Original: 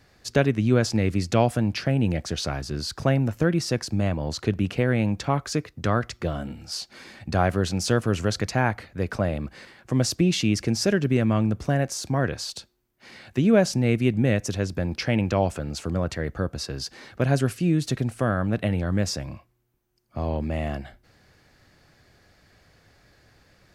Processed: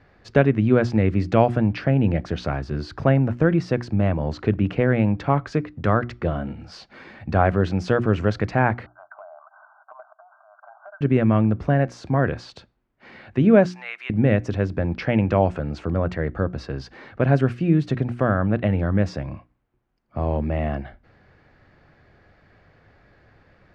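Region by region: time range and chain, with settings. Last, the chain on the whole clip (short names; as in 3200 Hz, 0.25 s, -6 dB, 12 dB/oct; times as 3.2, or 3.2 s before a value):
8.86–11.01 brick-wall FIR band-pass 600–1600 Hz + compressor, threshold -43 dBFS
13.66–14.1 HPF 1000 Hz 24 dB/oct + upward compressor, threshold -34 dBFS
whole clip: LPF 2100 Hz 12 dB/oct; notches 60/120/180/240/300/360 Hz; gain +4 dB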